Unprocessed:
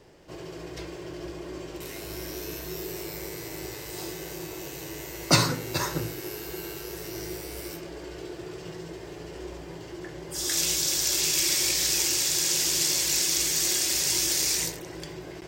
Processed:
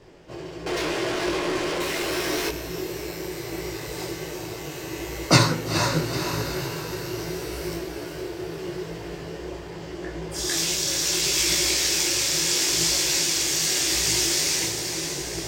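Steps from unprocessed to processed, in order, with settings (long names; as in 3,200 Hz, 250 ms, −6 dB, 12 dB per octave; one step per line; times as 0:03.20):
high-shelf EQ 8,000 Hz −9.5 dB
feedback delay with all-pass diffusion 461 ms, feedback 57%, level −6.5 dB
0:00.66–0:02.49: mid-hump overdrive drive 29 dB, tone 5,800 Hz, clips at −24 dBFS
micro pitch shift up and down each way 27 cents
level +8 dB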